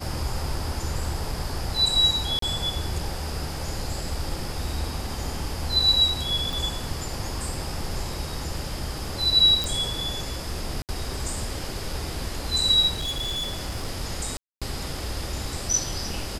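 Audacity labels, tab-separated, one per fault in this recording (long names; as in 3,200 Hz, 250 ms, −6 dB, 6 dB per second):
2.390000	2.420000	drop-out 33 ms
6.530000	6.530000	click
9.640000	9.640000	click
10.820000	10.890000	drop-out 68 ms
12.950000	13.880000	clipping −25 dBFS
14.370000	14.620000	drop-out 246 ms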